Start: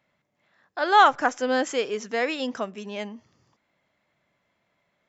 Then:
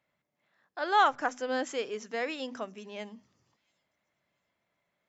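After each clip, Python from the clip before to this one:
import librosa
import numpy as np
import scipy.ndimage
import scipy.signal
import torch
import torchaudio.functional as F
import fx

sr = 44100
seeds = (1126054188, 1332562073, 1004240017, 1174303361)

y = fx.hum_notches(x, sr, base_hz=50, count=5)
y = fx.echo_wet_highpass(y, sr, ms=683, feedback_pct=33, hz=5100.0, wet_db=-23.0)
y = y * librosa.db_to_amplitude(-7.5)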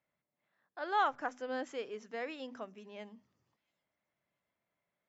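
y = fx.lowpass(x, sr, hz=3100.0, slope=6)
y = y * librosa.db_to_amplitude(-6.5)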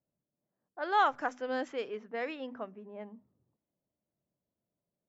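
y = fx.env_lowpass(x, sr, base_hz=430.0, full_db=-33.0)
y = y * librosa.db_to_amplitude(4.0)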